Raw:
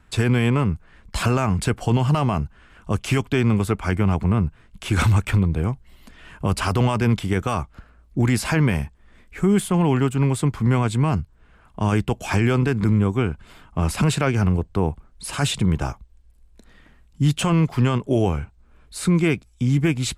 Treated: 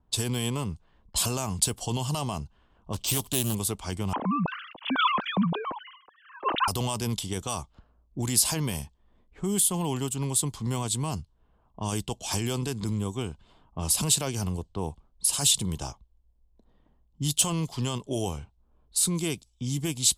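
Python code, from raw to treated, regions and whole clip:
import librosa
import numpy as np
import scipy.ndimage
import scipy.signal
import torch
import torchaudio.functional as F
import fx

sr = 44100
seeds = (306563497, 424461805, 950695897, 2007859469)

y = fx.chain(x, sr, fx.law_mismatch(coded='mu'),
    fx.resample_bad(factor=4, down='none', up='hold'),
    fx.doppler_dist(depth_ms=0.37), at=(2.93, 3.55))
y = fx.chain(y, sr, fx.sine_speech(),
    fx.peak_eq(hz=1300.0, db=12.5, octaves=1.1),
    fx.sustainer(db_per_s=76.0), at=(4.13, 6.68))
y = F.preemphasis(torch.from_numpy(y), 0.9).numpy()
y = fx.env_lowpass(y, sr, base_hz=890.0, full_db=-33.0)
y = fx.band_shelf(y, sr, hz=1800.0, db=-12.0, octaves=1.2)
y = y * librosa.db_to_amplitude(8.5)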